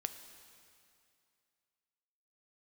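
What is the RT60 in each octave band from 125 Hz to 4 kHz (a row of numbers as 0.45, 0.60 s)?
2.5, 2.4, 2.5, 2.5, 2.4, 2.3 s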